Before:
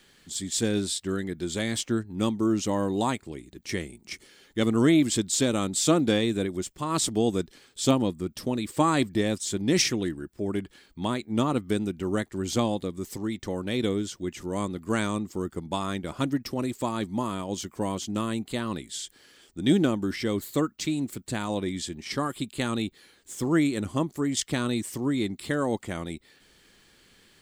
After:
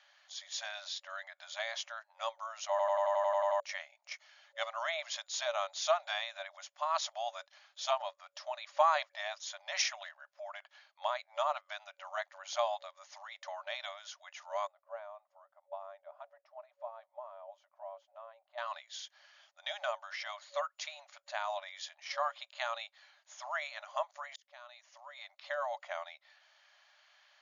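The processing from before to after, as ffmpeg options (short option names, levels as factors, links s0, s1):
-filter_complex "[0:a]asettb=1/sr,asplit=3[s0][s1][s2];[s0]atrim=end=14.674[s3];[s1]atrim=start=14.67:end=18.58,asetpts=PTS-STARTPTS,afade=t=in:d=0.004:c=qsin,afade=t=out:st=3.906:d=0.004:c=qsin,bandpass=f=430:t=q:w=2.8[s4];[s2]atrim=start=18.576[s5];[s3][s4]acrossfade=d=0.004:c1=hsin:c2=qsin[s6];[s6][s5]acrossfade=d=0.004:c1=qsin:c2=hsin,asplit=12[s7][s8][s9][s10][s11][s12][s13][s14][s15][s16][s17][s18];[s7]atrim=end=2.792[s19];[s8]atrim=start=2.698:end=2.792[s20];[s9]atrim=start=2.698:end=2.792[s21];[s10]atrim=start=2.698:end=2.792[s22];[s11]atrim=start=2.698:end=2.792[s23];[s12]atrim=start=2.698:end=2.792[s24];[s13]atrim=start=2.698:end=2.792[s25];[s14]atrim=start=2.698:end=2.792[s26];[s15]atrim=start=2.698:end=2.792[s27];[s16]atrim=start=2.698:end=2.792[s28];[s17]atrim=start=3.598:end=24.36,asetpts=PTS-STARTPTS,afade=t=out:st=20.758:d=0.004:c=hsin[s29];[s18]atrim=start=24.36,asetpts=PTS-STARTPTS,afade=t=in:d=1.61[s30];[s19][s20]acrossfade=d=0.004:c1=hsin:c2=hsin[s31];[s31][s21]acrossfade=d=0.004:c1=hsin:c2=hsin[s32];[s32][s22]acrossfade=d=0.004:c1=hsin:c2=hsin[s33];[s33][s23]acrossfade=d=0.004:c1=hsin:c2=hsin[s34];[s34][s24]acrossfade=d=0.004:c1=hsin:c2=hsin[s35];[s35][s25]acrossfade=d=0.004:c1=hsin:c2=hsin[s36];[s36][s26]acrossfade=d=0.004:c1=hsin:c2=hsin[s37];[s37][s27]acrossfade=d=0.004:c1=hsin:c2=hsin[s38];[s38][s28]acrossfade=d=0.004:c1=hsin:c2=hsin[s39];[s29][s30]concat=n=2:v=0:a=1[s40];[s39][s40]acrossfade=d=0.004:c1=hsin:c2=hsin,afftfilt=real='re*between(b*sr/4096,560,7000)':imag='im*between(b*sr/4096,560,7000)':win_size=4096:overlap=0.75,highshelf=f=2200:g=-9.5"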